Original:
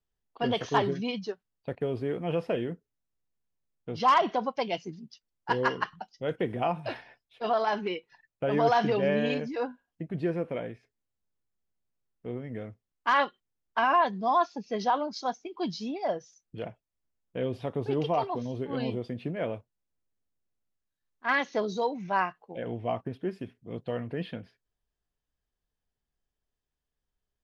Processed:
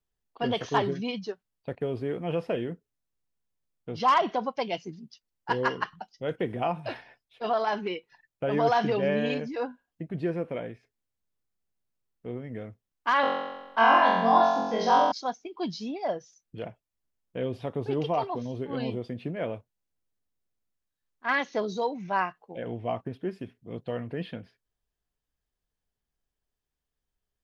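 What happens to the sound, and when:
13.21–15.12 s: flutter echo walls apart 3.8 m, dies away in 1.1 s

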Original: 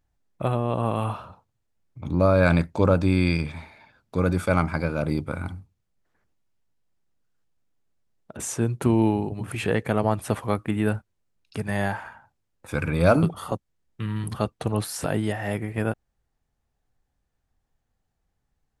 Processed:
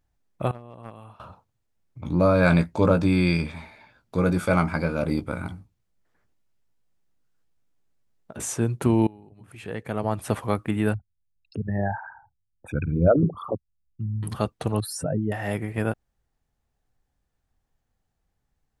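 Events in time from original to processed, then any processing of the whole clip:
0.51–1.20 s: gate -22 dBFS, range -19 dB
2.03–8.53 s: doubling 17 ms -7.5 dB
9.07–10.32 s: fade in quadratic, from -24 dB
10.94–14.23 s: resonances exaggerated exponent 3
14.80–15.32 s: spectral contrast enhancement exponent 2.4

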